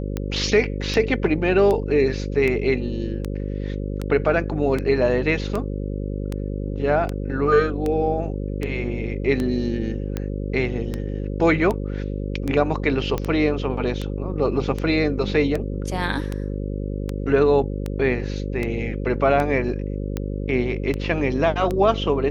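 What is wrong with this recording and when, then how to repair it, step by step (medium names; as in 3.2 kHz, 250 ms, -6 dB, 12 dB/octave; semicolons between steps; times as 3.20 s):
buzz 50 Hz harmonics 11 -27 dBFS
tick 78 rpm -13 dBFS
13.18 s: pop -12 dBFS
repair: de-click; de-hum 50 Hz, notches 11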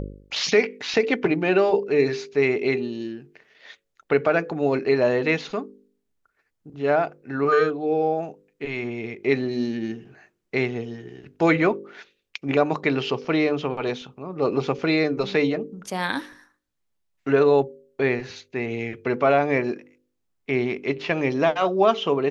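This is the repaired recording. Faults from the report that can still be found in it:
nothing left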